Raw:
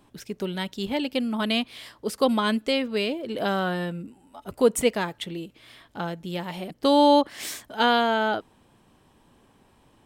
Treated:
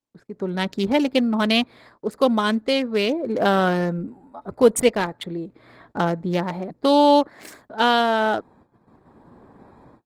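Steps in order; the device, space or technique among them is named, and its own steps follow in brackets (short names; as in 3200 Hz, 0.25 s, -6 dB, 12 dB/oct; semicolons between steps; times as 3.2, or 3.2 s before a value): Wiener smoothing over 15 samples; gate with hold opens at -54 dBFS; video call (HPF 110 Hz 6 dB/oct; AGC gain up to 16.5 dB; gate -47 dBFS, range -28 dB; gain -3.5 dB; Opus 20 kbps 48000 Hz)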